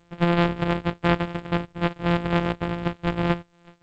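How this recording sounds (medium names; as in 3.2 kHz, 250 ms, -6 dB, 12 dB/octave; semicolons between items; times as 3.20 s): a buzz of ramps at a fixed pitch in blocks of 256 samples; chopped level 0.66 Hz, depth 65%, duty 90%; G.722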